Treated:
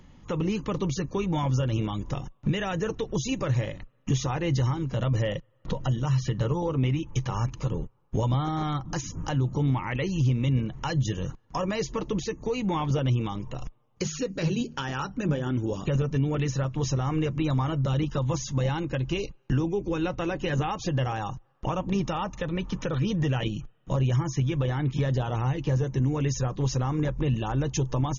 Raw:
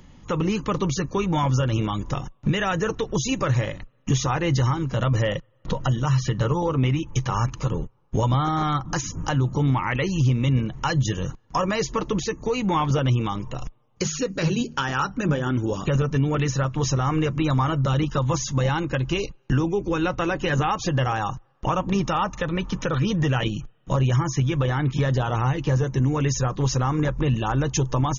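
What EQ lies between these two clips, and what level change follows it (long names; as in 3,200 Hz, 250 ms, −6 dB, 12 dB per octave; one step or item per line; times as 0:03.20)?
high-shelf EQ 5,400 Hz −5 dB
dynamic equaliser 1,300 Hz, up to −6 dB, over −41 dBFS, Q 1.3
−3.5 dB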